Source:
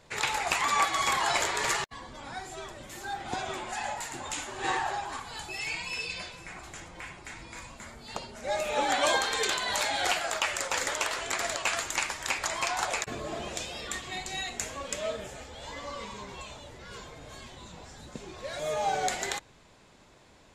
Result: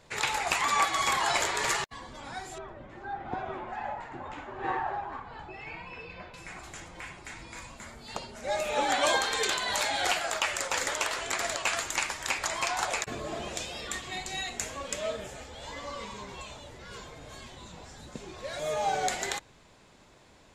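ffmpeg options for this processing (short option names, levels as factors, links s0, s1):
-filter_complex "[0:a]asettb=1/sr,asplit=3[s0][s1][s2];[s0]atrim=end=2.584[s3];[s1]atrim=start=2.58:end=6.34,asetpts=PTS-STARTPTS,afade=t=in:d=0.004:c=qsin,afade=t=out:st=3.756:d=0.004:c=qsin,lowpass=1500[s4];[s2]atrim=start=6.336[s5];[s3][s4]acrossfade=d=0.004:c1=hsin:c2=qsin[s6];[s6][s5]acrossfade=d=0.004:c1=qsin:c2=hsin"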